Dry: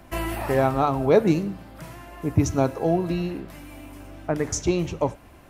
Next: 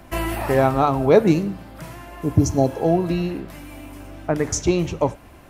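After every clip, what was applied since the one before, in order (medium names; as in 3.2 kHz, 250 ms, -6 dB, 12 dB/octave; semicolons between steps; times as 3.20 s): spectral replace 2.28–2.79 s, 860–3900 Hz both; trim +3.5 dB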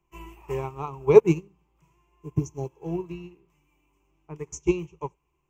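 rippled EQ curve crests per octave 0.73, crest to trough 17 dB; upward expansion 2.5:1, over -24 dBFS; trim -2.5 dB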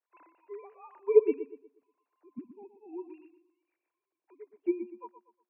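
formants replaced by sine waves; filtered feedback delay 120 ms, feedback 34%, low-pass 2.8 kHz, level -11 dB; trim -7.5 dB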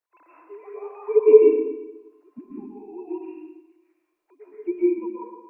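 algorithmic reverb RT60 1 s, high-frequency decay 0.65×, pre-delay 95 ms, DRR -7.5 dB; trim +1.5 dB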